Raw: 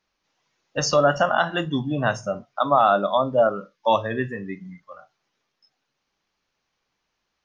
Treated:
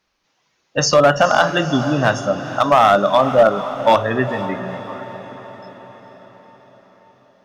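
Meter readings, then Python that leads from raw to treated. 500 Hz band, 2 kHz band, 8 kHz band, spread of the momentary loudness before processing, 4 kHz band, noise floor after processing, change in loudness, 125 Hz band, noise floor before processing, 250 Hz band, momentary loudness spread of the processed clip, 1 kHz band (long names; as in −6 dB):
+6.5 dB, +6.5 dB, can't be measured, 14 LU, +7.0 dB, −67 dBFS, +6.0 dB, +6.5 dB, −78 dBFS, +6.5 dB, 17 LU, +6.0 dB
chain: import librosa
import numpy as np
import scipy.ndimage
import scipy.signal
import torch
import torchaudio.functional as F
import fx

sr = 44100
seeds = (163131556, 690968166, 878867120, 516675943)

y = fx.clip_asym(x, sr, top_db=-13.0, bottom_db=-11.0)
y = fx.echo_diffused(y, sr, ms=471, feedback_pct=57, wet_db=-12.0)
y = y * 10.0 ** (6.5 / 20.0)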